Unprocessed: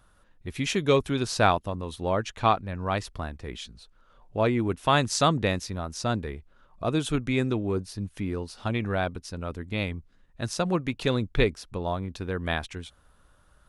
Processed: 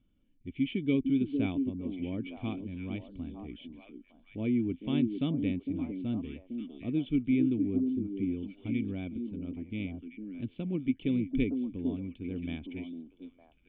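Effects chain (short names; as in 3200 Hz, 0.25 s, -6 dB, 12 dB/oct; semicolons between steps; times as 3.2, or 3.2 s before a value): vocal tract filter i; delay with a stepping band-pass 0.455 s, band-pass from 300 Hz, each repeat 1.4 oct, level -3 dB; gain +3 dB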